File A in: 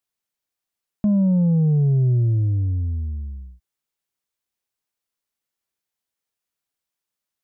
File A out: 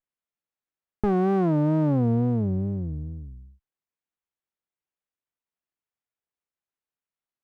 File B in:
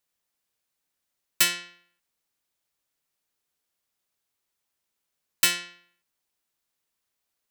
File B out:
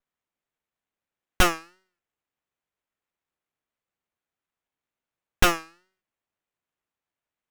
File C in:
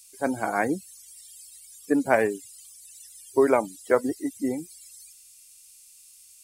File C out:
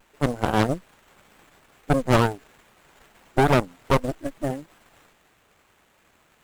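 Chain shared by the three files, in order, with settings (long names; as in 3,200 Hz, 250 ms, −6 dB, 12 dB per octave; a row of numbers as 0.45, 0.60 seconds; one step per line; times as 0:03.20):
harmonic generator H 3 −15 dB, 6 −9 dB, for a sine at −6 dBFS
tape wow and flutter 130 cents
windowed peak hold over 9 samples
loudness normalisation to −24 LKFS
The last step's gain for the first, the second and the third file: −3.0, +1.0, +0.5 decibels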